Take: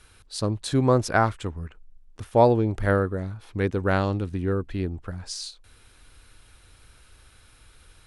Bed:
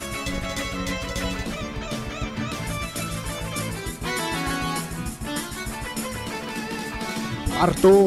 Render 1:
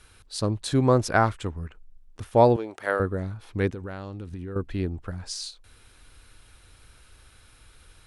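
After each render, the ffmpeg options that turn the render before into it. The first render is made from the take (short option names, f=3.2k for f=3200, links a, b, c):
-filter_complex "[0:a]asettb=1/sr,asplit=3[a][b][c];[a]atrim=end=2.564[d];[b]atrim=start=2.56:end=3,asetpts=PTS-STARTPTS,afade=t=in:d=0.004:c=qsin,afade=t=out:st=0.436:d=0.004:c=qsin,highpass=530[e];[c]atrim=start=2.996[f];[d][e]acrossfade=d=0.004:c1=hsin:c2=qsin[g];[g][f]acrossfade=d=0.004:c1=qsin:c2=hsin,asettb=1/sr,asplit=3[h][i][j];[h]atrim=end=3.714[k];[i]atrim=start=3.71:end=4.56,asetpts=PTS-STARTPTS,afade=t=in:d=0.004:c=qsin,afade=t=out:st=0.846:d=0.004:c=qsin,acompressor=threshold=-32dB:ratio=8:attack=3.2:release=140:knee=1:detection=peak[l];[j]atrim=start=4.556[m];[k][l]acrossfade=d=0.004:c1=hsin:c2=qsin[n];[n][m]acrossfade=d=0.004:c1=qsin:c2=hsin"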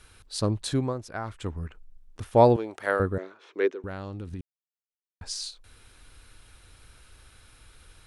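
-filter_complex "[0:a]asettb=1/sr,asplit=3[a][b][c];[a]atrim=end=3.184[d];[b]atrim=start=3.18:end=3.84,asetpts=PTS-STARTPTS,afade=t=in:d=0.004:c=qsin,afade=t=out:st=0.656:d=0.004:c=qsin,highpass=f=360:w=0.5412,highpass=f=360:w=1.3066,equalizer=f=390:t=q:w=4:g=7,equalizer=f=790:t=q:w=4:g=-7,equalizer=f=4.6k:t=q:w=4:g=-7,lowpass=f=6.1k:w=0.5412,lowpass=f=6.1k:w=1.3066[e];[c]atrim=start=3.836[f];[d][e]acrossfade=d=0.004:c1=hsin:c2=qsin[g];[g][f]acrossfade=d=0.004:c1=qsin:c2=hsin,asplit=5[h][i][j][k][l];[h]atrim=end=0.94,asetpts=PTS-STARTPTS,afade=t=out:st=0.64:d=0.3:silence=0.199526[m];[i]atrim=start=0.94:end=1.24,asetpts=PTS-STARTPTS,volume=-14dB[n];[j]atrim=start=1.24:end=4.41,asetpts=PTS-STARTPTS,afade=t=in:d=0.3:silence=0.199526,afade=t=out:st=3.166:d=0.004:c=hsin[o];[k]atrim=start=4.41:end=5.21,asetpts=PTS-STARTPTS,volume=0[p];[l]atrim=start=5.21,asetpts=PTS-STARTPTS,afade=t=in:d=0.004:c=hsin[q];[m][n][o][p][q]concat=n=5:v=0:a=1"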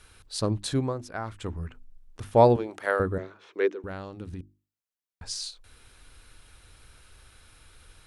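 -af "bandreject=f=50:t=h:w=6,bandreject=f=100:t=h:w=6,bandreject=f=150:t=h:w=6,bandreject=f=200:t=h:w=6,bandreject=f=250:t=h:w=6,bandreject=f=300:t=h:w=6,bandreject=f=350:t=h:w=6"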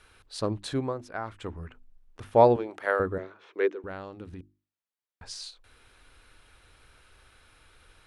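-af "bass=f=250:g=-6,treble=f=4k:g=-8"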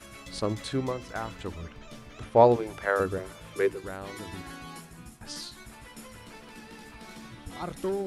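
-filter_complex "[1:a]volume=-16.5dB[a];[0:a][a]amix=inputs=2:normalize=0"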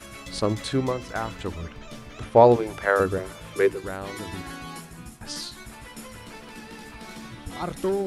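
-af "volume=5dB,alimiter=limit=-3dB:level=0:latency=1"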